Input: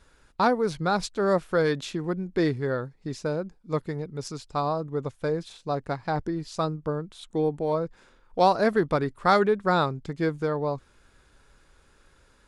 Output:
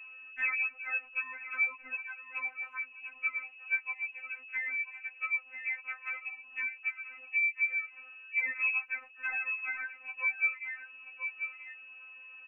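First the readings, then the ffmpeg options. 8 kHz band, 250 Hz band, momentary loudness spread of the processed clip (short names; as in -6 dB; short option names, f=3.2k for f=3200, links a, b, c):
under -35 dB, under -40 dB, 12 LU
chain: -filter_complex "[0:a]acrossover=split=590[a][b];[b]asoftclip=type=hard:threshold=-25.5dB[c];[a][c]amix=inputs=2:normalize=0,aeval=exprs='val(0)+0.0141*(sin(2*PI*50*n/s)+sin(2*PI*2*50*n/s)/2+sin(2*PI*3*50*n/s)/3+sin(2*PI*4*50*n/s)/4+sin(2*PI*5*50*n/s)/5)':c=same,lowpass=f=2.4k:t=q:w=0.5098,lowpass=f=2.4k:t=q:w=0.6013,lowpass=f=2.4k:t=q:w=0.9,lowpass=f=2.4k:t=q:w=2.563,afreqshift=-2800,equalizer=f=130:w=1.1:g=-13.5,bandreject=f=2k:w=14,aecho=1:1:984:0.158,acompressor=threshold=-33dB:ratio=6,afftfilt=real='re*3.46*eq(mod(b,12),0)':imag='im*3.46*eq(mod(b,12),0)':win_size=2048:overlap=0.75,volume=3.5dB"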